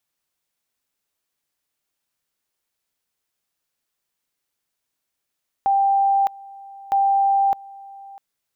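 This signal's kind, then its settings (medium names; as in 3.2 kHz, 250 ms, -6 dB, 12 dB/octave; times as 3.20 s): two-level tone 789 Hz -14.5 dBFS, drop 22.5 dB, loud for 0.61 s, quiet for 0.65 s, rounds 2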